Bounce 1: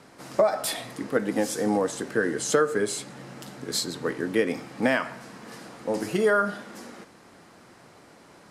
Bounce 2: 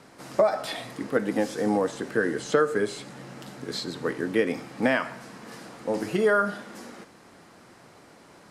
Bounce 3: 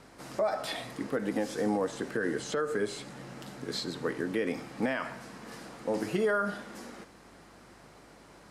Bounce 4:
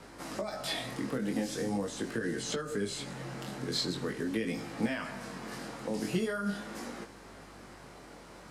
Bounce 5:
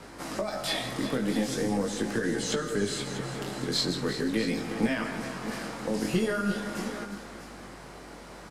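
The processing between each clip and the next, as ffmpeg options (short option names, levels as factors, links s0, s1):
-filter_complex "[0:a]acrossover=split=4500[s0][s1];[s1]acompressor=threshold=0.00501:ratio=4:attack=1:release=60[s2];[s0][s2]amix=inputs=2:normalize=0"
-af "alimiter=limit=0.133:level=0:latency=1:release=88,aeval=exprs='val(0)+0.000794*(sin(2*PI*50*n/s)+sin(2*PI*2*50*n/s)/2+sin(2*PI*3*50*n/s)/3+sin(2*PI*4*50*n/s)/4+sin(2*PI*5*50*n/s)/5)':c=same,volume=0.75"
-filter_complex "[0:a]flanger=delay=17.5:depth=6.2:speed=0.43,acrossover=split=250|2600[s0][s1][s2];[s1]acompressor=threshold=0.00708:ratio=6[s3];[s0][s3][s2]amix=inputs=3:normalize=0,volume=2.11"
-filter_complex "[0:a]aeval=exprs='0.133*(cos(1*acos(clip(val(0)/0.133,-1,1)))-cos(1*PI/2))+0.00596*(cos(4*acos(clip(val(0)/0.133,-1,1)))-cos(4*PI/2))':c=same,asplit=2[s0][s1];[s1]aecho=0:1:164|356|643:0.188|0.266|0.237[s2];[s0][s2]amix=inputs=2:normalize=0,volume=1.68"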